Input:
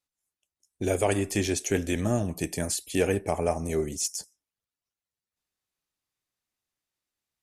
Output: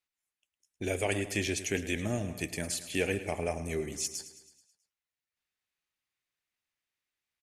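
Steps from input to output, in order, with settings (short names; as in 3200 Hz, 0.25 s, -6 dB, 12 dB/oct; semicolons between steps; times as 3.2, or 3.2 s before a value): bell 2200 Hz +10 dB 1.6 oct; on a send: feedback echo 0.108 s, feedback 56%, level -14 dB; on the sum: dynamic EQ 1200 Hz, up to -7 dB, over -40 dBFS, Q 1.2; gain -6.5 dB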